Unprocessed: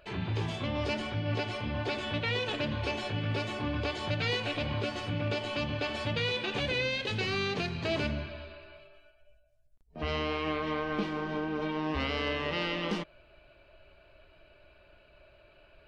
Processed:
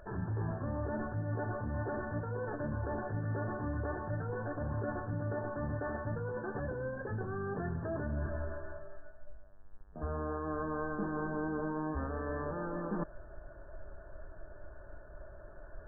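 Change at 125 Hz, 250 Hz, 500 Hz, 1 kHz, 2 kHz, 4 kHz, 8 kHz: -2.0 dB, -3.5 dB, -4.0 dB, -3.5 dB, -9.5 dB, under -40 dB, under -25 dB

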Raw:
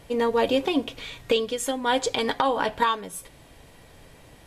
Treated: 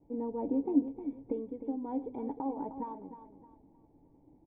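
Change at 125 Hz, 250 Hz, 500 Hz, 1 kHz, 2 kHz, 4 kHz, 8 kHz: -11.5 dB, -3.0 dB, -14.5 dB, -16.5 dB, under -40 dB, under -40 dB, under -40 dB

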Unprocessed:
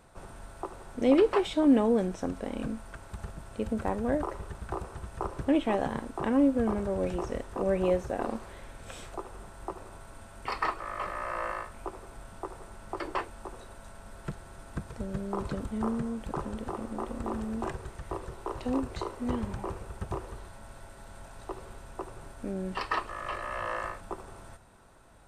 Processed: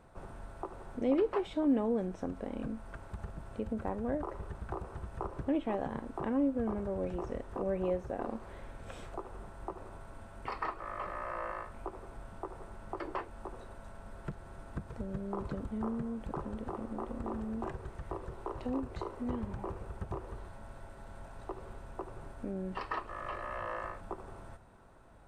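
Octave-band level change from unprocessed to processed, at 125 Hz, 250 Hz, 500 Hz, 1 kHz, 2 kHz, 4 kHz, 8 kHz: -3.5 dB, -6.0 dB, -6.0 dB, -5.5 dB, -7.5 dB, -11.0 dB, under -10 dB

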